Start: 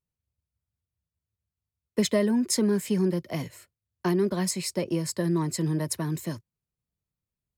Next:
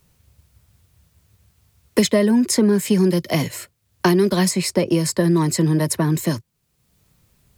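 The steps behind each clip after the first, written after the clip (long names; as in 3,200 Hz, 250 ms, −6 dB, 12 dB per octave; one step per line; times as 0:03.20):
multiband upward and downward compressor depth 70%
level +8.5 dB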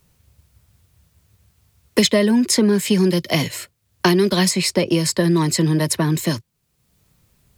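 dynamic equaliser 3,400 Hz, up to +7 dB, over −41 dBFS, Q 0.84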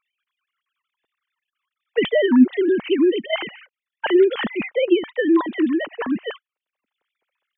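three sine waves on the formant tracks
level −1.5 dB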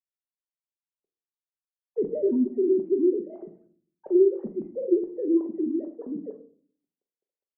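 transistor ladder low-pass 510 Hz, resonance 45%
rectangular room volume 490 cubic metres, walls furnished, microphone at 1.1 metres
level −3.5 dB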